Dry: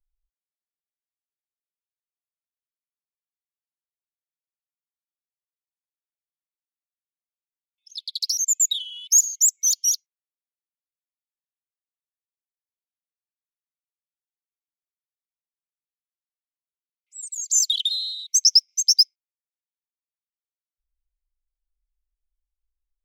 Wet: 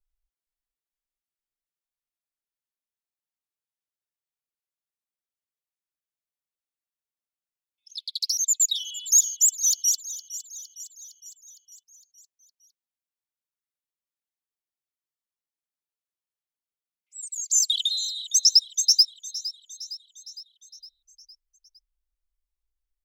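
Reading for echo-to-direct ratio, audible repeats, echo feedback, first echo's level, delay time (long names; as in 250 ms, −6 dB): −13.5 dB, 5, 58%, −15.5 dB, 460 ms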